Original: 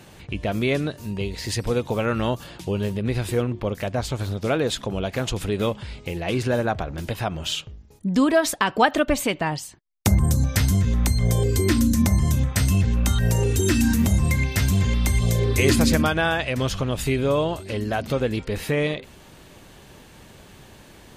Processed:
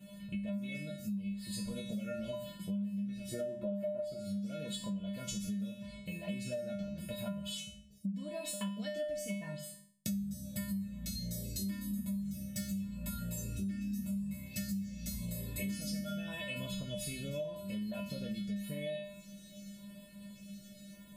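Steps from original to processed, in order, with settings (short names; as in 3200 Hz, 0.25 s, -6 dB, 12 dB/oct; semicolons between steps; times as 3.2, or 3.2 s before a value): 3.31–4.2 small resonant body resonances 360/600/1300 Hz, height 16 dB, ringing for 35 ms; 12.13–12.89 overloaded stage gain 16.5 dB; 13.43–13.92 tone controls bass +4 dB, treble -15 dB; reverb RT60 0.35 s, pre-delay 6 ms, DRR 7.5 dB; LFO notch square 0.86 Hz 970–5800 Hz; bell 1300 Hz -12.5 dB 2 oct; resonator 200 Hz, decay 0.47 s, harmonics odd, mix 100%; compressor 8:1, threshold -49 dBFS, peak gain reduction 22 dB; gain +13 dB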